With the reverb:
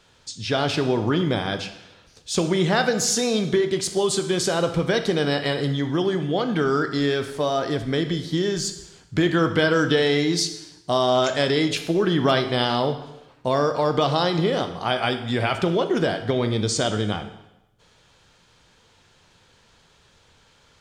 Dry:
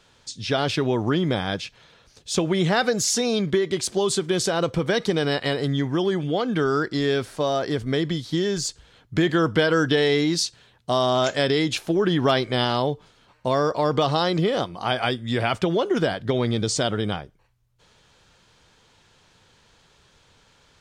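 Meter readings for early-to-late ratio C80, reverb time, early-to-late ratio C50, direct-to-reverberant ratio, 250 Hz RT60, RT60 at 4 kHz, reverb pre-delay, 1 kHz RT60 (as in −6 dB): 12.5 dB, 0.95 s, 10.0 dB, 7.5 dB, 0.95 s, 0.85 s, 7 ms, 0.90 s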